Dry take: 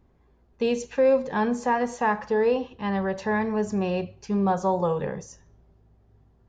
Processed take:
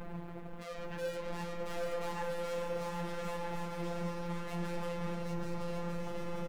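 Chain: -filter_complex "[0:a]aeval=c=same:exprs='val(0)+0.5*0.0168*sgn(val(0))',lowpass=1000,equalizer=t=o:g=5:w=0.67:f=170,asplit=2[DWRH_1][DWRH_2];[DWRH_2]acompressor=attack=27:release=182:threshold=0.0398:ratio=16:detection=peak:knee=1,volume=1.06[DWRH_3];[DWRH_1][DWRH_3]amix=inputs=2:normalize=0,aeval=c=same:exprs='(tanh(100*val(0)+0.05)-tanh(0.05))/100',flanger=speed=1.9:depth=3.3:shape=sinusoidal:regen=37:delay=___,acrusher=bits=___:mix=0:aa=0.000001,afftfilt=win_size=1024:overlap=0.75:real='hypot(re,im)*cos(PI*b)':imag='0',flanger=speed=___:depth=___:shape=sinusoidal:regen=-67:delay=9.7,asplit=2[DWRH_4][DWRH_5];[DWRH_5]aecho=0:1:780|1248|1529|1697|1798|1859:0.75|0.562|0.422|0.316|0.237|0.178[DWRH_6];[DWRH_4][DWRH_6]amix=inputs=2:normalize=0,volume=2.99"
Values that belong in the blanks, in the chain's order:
3.8, 11, 0.6, 9.9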